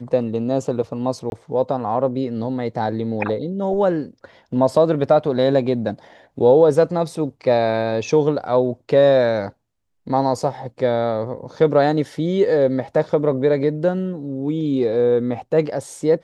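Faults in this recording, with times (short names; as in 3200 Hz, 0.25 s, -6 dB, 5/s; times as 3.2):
1.3–1.32 gap 21 ms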